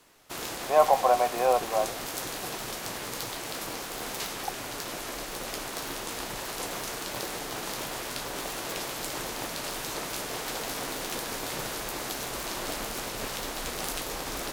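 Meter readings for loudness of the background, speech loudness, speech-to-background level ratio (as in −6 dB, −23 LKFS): −33.5 LKFS, −25.0 LKFS, 8.5 dB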